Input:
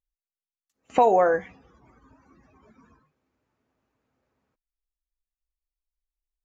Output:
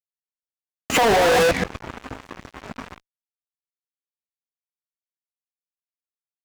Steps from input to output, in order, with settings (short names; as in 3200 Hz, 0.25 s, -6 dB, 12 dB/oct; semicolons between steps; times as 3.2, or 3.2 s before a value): reverse delay 0.126 s, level -7.5 dB; 0.98–1.43 negative-ratio compressor -28 dBFS, ratio -1; fuzz box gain 46 dB, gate -53 dBFS; gain -2 dB